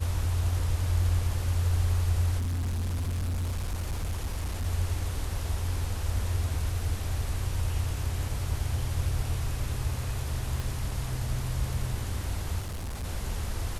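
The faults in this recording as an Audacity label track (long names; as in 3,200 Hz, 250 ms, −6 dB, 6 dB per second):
2.380000	4.660000	clipping −27 dBFS
10.600000	10.600000	click
12.600000	13.050000	clipping −31.5 dBFS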